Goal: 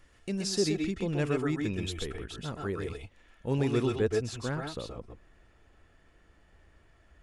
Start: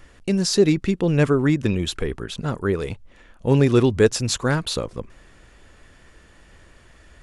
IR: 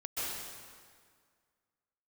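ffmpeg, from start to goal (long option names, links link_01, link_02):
-filter_complex "[0:a]asetnsamples=nb_out_samples=441:pad=0,asendcmd='3.87 highshelf g -9',highshelf=frequency=2800:gain=2.5[link_01];[1:a]atrim=start_sample=2205,afade=type=out:start_time=0.18:duration=0.01,atrim=end_sample=8379[link_02];[link_01][link_02]afir=irnorm=-1:irlink=0,volume=-7dB"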